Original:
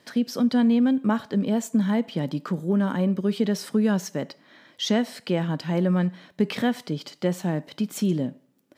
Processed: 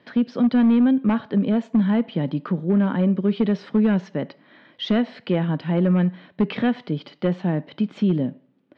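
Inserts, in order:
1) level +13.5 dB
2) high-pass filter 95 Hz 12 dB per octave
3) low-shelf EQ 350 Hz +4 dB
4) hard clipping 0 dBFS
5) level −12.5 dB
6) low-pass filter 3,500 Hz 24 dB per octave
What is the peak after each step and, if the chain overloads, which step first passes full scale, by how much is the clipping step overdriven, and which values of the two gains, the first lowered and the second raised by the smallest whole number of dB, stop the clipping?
+3.5, +3.5, +5.5, 0.0, −12.5, −12.0 dBFS
step 1, 5.5 dB
step 1 +7.5 dB, step 5 −6.5 dB

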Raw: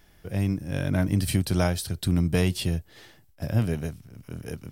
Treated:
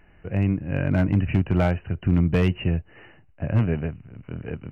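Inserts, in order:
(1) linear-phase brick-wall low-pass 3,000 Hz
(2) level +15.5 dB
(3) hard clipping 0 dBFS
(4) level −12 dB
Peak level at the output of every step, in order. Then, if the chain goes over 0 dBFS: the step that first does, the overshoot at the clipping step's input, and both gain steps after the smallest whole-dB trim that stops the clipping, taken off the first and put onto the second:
−9.5, +6.0, 0.0, −12.0 dBFS
step 2, 6.0 dB
step 2 +9.5 dB, step 4 −6 dB

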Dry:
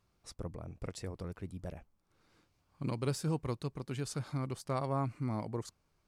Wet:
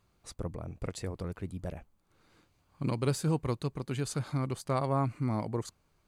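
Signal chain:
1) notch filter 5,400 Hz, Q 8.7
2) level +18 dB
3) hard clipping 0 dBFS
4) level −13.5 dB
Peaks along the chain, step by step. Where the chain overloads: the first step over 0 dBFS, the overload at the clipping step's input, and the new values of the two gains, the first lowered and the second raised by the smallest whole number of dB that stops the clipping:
−22.5, −4.5, −4.5, −18.0 dBFS
no step passes full scale

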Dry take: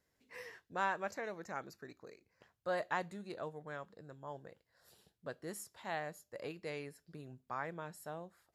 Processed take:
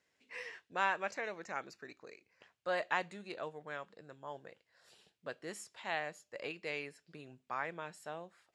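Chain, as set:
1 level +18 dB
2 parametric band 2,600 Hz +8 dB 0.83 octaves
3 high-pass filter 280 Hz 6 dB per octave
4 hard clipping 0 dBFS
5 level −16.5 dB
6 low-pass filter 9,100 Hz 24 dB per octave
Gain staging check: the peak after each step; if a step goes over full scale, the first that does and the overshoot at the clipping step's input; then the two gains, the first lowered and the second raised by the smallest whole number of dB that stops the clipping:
−3.5, −1.0, −1.5, −1.5, −18.0, −18.0 dBFS
no step passes full scale

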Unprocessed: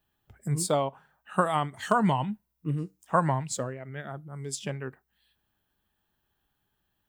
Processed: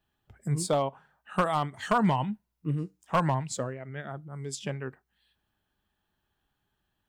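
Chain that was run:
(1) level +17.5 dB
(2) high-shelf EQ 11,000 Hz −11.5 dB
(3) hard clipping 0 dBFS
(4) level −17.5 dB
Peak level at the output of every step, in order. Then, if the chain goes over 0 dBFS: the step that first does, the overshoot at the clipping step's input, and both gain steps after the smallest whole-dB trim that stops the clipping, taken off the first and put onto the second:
+9.5, +9.0, 0.0, −17.5 dBFS
step 1, 9.0 dB
step 1 +8.5 dB, step 4 −8.5 dB

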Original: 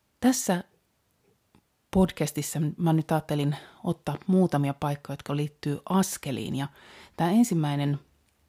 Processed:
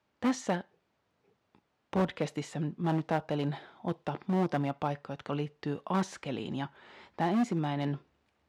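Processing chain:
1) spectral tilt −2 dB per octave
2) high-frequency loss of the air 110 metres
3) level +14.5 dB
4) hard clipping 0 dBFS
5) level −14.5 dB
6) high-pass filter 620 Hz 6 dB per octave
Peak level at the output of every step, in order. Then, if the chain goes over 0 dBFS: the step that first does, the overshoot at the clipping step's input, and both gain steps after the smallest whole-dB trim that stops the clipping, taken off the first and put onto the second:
−6.5, −6.5, +8.0, 0.0, −14.5, −15.0 dBFS
step 3, 8.0 dB
step 3 +6.5 dB, step 5 −6.5 dB

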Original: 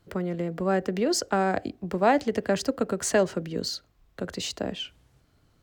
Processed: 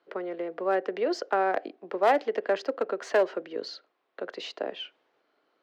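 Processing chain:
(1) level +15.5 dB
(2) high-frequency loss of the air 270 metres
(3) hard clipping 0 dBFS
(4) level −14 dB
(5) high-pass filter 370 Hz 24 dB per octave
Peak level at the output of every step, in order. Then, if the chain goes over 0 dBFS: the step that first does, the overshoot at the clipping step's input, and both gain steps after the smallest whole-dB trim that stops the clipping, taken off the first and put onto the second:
+5.5, +4.5, 0.0, −14.0, −10.5 dBFS
step 1, 4.5 dB
step 1 +10.5 dB, step 4 −9 dB

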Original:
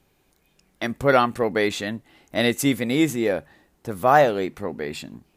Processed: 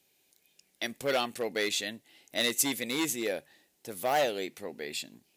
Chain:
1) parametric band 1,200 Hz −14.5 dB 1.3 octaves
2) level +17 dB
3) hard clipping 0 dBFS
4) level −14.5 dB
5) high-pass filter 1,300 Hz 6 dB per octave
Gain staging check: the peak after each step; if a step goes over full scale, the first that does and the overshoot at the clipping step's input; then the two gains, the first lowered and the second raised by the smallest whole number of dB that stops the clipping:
−9.5, +7.5, 0.0, −14.5, −14.0 dBFS
step 2, 7.5 dB
step 2 +9 dB, step 4 −6.5 dB

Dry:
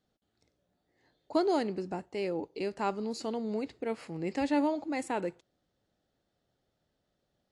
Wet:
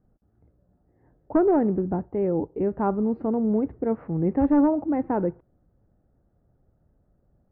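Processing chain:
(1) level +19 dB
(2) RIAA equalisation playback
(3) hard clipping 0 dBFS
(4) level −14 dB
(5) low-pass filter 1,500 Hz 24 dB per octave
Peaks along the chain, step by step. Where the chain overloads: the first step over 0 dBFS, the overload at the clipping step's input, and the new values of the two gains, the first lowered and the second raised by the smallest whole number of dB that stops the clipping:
+3.5, +6.0, 0.0, −14.0, −13.0 dBFS
step 1, 6.0 dB
step 1 +13 dB, step 4 −8 dB

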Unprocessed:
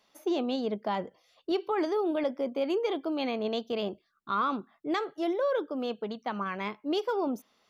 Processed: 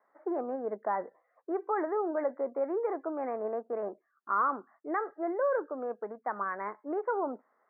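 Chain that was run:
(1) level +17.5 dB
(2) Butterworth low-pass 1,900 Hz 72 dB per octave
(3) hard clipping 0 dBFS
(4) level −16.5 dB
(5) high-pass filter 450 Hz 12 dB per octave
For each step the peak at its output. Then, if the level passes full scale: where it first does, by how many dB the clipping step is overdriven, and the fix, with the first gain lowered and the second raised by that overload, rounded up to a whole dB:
−1.0, −1.5, −1.5, −18.0, −18.0 dBFS
no step passes full scale

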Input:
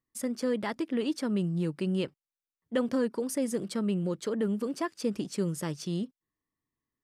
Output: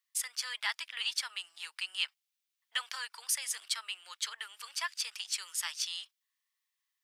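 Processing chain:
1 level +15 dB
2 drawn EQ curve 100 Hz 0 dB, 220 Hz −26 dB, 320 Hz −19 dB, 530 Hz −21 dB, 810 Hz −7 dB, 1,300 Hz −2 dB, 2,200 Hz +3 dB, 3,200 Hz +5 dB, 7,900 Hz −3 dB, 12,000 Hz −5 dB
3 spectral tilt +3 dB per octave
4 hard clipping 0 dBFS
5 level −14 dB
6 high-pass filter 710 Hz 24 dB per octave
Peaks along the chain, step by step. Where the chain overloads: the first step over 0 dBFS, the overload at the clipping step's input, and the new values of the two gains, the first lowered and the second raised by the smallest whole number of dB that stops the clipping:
−2.0, −7.0, −2.5, −2.5, −16.5, −17.0 dBFS
no step passes full scale

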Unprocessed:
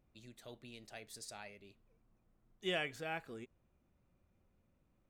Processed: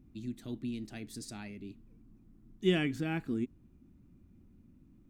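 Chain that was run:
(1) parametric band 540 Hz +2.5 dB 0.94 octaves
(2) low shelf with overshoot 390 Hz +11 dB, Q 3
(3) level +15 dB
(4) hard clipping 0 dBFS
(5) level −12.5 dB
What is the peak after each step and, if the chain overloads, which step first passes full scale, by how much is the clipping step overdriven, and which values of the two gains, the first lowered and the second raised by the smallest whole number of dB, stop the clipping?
−24.0, −18.0, −3.0, −3.0, −15.5 dBFS
no step passes full scale

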